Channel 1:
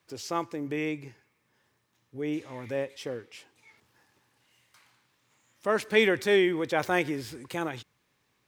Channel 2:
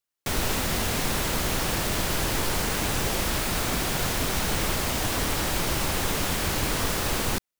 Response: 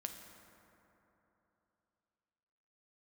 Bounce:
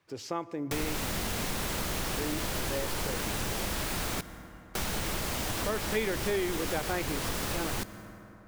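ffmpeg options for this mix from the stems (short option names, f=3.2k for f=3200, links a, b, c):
-filter_complex "[0:a]highshelf=f=3.8k:g=-8,volume=-0.5dB,asplit=2[a][b];[b]volume=-9dB[c];[1:a]adelay=450,volume=-5dB,asplit=3[d][e][f];[d]atrim=end=4.21,asetpts=PTS-STARTPTS,afade=t=out:st=4.206:d=0.004:c=hsin[g];[e]atrim=start=4.21:end=4.75,asetpts=PTS-STARTPTS,volume=0[h];[f]atrim=start=4.75,asetpts=PTS-STARTPTS,afade=t=in:d=0.004:c=hsin[i];[g][h][i]concat=n=3:v=0:a=1,asplit=2[j][k];[k]volume=-3.5dB[l];[2:a]atrim=start_sample=2205[m];[c][l]amix=inputs=2:normalize=0[n];[n][m]afir=irnorm=-1:irlink=0[o];[a][j][o]amix=inputs=3:normalize=0,acompressor=threshold=-31dB:ratio=2.5"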